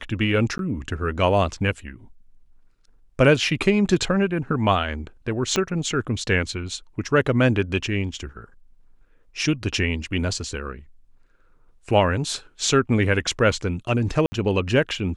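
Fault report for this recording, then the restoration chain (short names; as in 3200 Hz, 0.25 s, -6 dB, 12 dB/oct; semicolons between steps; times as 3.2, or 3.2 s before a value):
0.58–0.59 gap 12 ms
5.56 pop -7 dBFS
14.26–14.32 gap 60 ms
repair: de-click; interpolate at 0.58, 12 ms; interpolate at 14.26, 60 ms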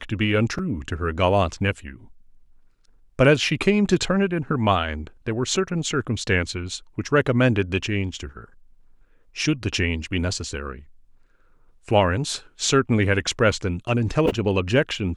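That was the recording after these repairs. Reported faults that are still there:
5.56 pop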